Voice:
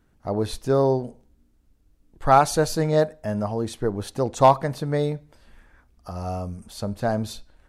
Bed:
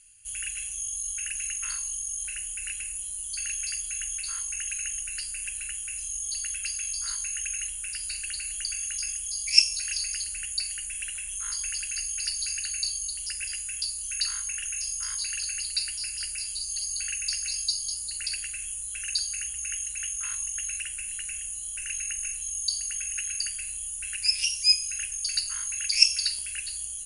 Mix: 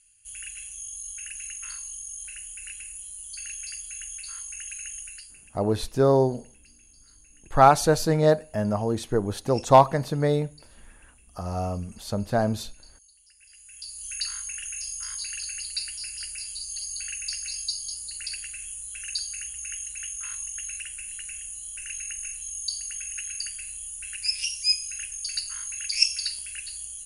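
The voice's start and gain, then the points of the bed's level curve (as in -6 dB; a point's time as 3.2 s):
5.30 s, +0.5 dB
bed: 5.06 s -5 dB
5.63 s -24.5 dB
13.35 s -24.5 dB
14.06 s -2.5 dB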